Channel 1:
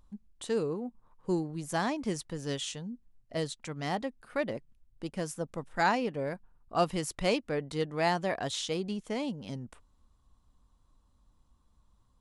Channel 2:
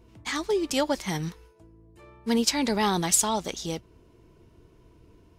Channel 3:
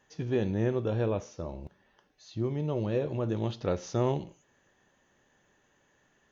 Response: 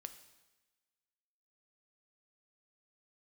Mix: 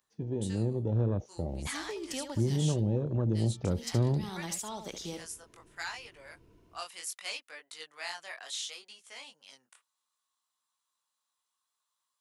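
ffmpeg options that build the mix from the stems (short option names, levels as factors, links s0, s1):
-filter_complex "[0:a]flanger=delay=17:depth=7.6:speed=0.66,highpass=1500,highshelf=f=9100:g=9,volume=1[s0];[1:a]equalizer=f=63:w=1.5:g=-4.5,acompressor=threshold=0.0355:ratio=6,adelay=1400,volume=0.501,asplit=2[s1][s2];[s2]volume=0.376[s3];[2:a]afwtdn=0.0178,dynaudnorm=f=510:g=3:m=2.51,volume=0.708,asplit=2[s4][s5];[s5]apad=whole_len=299293[s6];[s1][s6]sidechaincompress=threshold=0.0355:ratio=8:attack=38:release=110[s7];[s3]aecho=0:1:71:1[s8];[s0][s7][s4][s8]amix=inputs=4:normalize=0,acrossover=split=250|3000[s9][s10][s11];[s10]acompressor=threshold=0.0158:ratio=6[s12];[s9][s12][s11]amix=inputs=3:normalize=0"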